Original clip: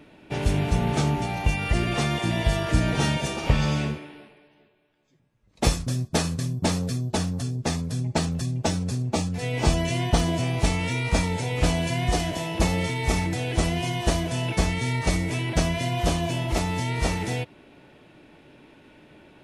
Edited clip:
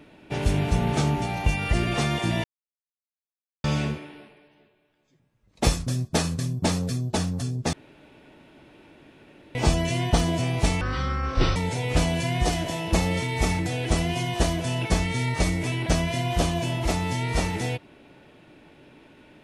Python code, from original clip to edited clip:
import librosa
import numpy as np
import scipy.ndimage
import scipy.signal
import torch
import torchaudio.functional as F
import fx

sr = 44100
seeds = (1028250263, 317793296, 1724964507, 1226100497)

y = fx.edit(x, sr, fx.silence(start_s=2.44, length_s=1.2),
    fx.room_tone_fill(start_s=7.73, length_s=1.82),
    fx.speed_span(start_s=10.81, length_s=0.42, speed=0.56), tone=tone)